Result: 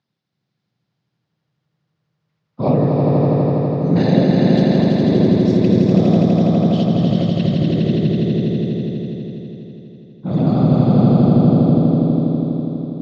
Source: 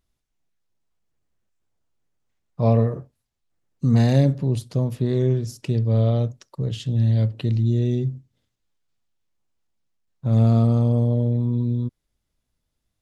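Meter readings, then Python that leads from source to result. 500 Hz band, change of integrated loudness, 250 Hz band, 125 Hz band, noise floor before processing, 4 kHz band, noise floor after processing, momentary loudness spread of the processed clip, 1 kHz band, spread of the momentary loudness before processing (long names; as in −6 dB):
+9.0 dB, +6.0 dB, +11.5 dB, +3.5 dB, −78 dBFS, +9.0 dB, −75 dBFS, 11 LU, +10.5 dB, 11 LU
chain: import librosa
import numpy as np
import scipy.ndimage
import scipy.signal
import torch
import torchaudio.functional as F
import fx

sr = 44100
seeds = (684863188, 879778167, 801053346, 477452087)

p1 = fx.whisperise(x, sr, seeds[0])
p2 = scipy.signal.sosfilt(scipy.signal.ellip(3, 1.0, 60, [140.0, 4800.0], 'bandpass', fs=sr, output='sos'), p1)
p3 = p2 + fx.echo_swell(p2, sr, ms=82, loudest=5, wet_db=-4.5, dry=0)
y = p3 * 10.0 ** (3.0 / 20.0)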